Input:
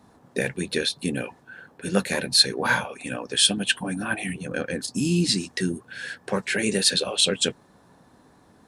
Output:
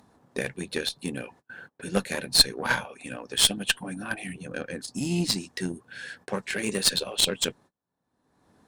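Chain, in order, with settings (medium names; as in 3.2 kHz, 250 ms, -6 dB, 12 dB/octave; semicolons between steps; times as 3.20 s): gate -45 dBFS, range -32 dB; Chebyshev shaper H 2 -7 dB, 5 -25 dB, 7 -19 dB, 8 -36 dB, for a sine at -3 dBFS; upward compressor, threshold -33 dBFS; trim -1 dB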